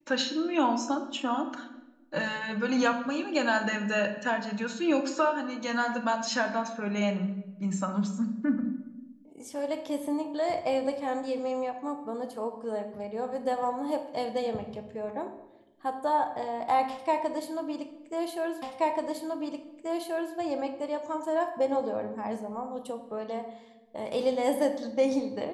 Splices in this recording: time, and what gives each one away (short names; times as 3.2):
18.62 repeat of the last 1.73 s